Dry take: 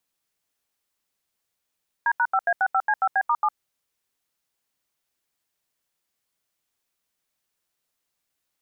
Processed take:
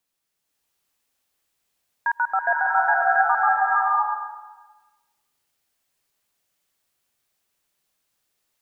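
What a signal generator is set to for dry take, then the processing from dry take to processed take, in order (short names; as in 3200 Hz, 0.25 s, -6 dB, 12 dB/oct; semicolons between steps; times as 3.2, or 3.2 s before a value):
DTMF "D#5A65C5B*7", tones 57 ms, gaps 80 ms, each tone -20.5 dBFS
bloom reverb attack 0.62 s, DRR -3.5 dB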